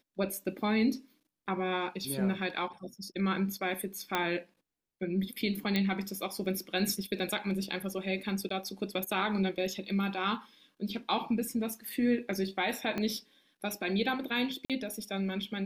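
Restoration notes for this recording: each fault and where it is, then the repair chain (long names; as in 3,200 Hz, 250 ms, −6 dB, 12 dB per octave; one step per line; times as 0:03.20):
0:04.15: click −14 dBFS
0:05.76: click −16 dBFS
0:08.49–0:08.50: drop-out 14 ms
0:12.98: click −20 dBFS
0:14.65–0:14.70: drop-out 47 ms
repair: click removal
repair the gap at 0:08.49, 14 ms
repair the gap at 0:14.65, 47 ms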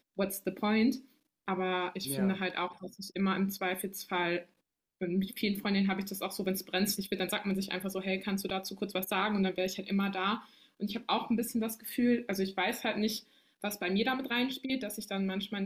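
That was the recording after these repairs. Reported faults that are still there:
0:12.98: click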